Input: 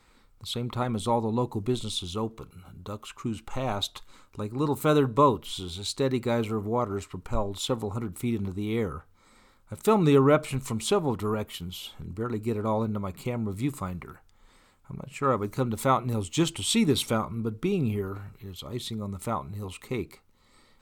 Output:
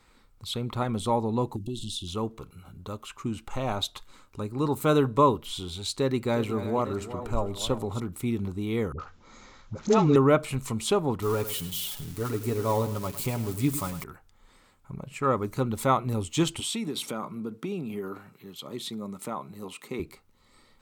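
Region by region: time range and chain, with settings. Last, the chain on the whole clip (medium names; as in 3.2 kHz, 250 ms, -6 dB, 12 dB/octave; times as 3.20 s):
1.56–2.08 s: brick-wall FIR band-stop 390–2600 Hz + compression 2.5:1, threshold -31 dBFS
5.94–8.00 s: chunks repeated in reverse 526 ms, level -12.5 dB + delay 358 ms -13 dB
8.92–10.16 s: companding laws mixed up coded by mu + careless resampling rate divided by 3×, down none, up filtered + phase dispersion highs, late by 78 ms, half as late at 630 Hz
11.22–14.04 s: zero-crossing glitches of -29 dBFS + comb 7.1 ms, depth 51% + feedback delay 102 ms, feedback 32%, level -13 dB
16.60–20.00 s: compression 10:1, threshold -27 dBFS + high-pass 160 Hz 24 dB/octave
whole clip: none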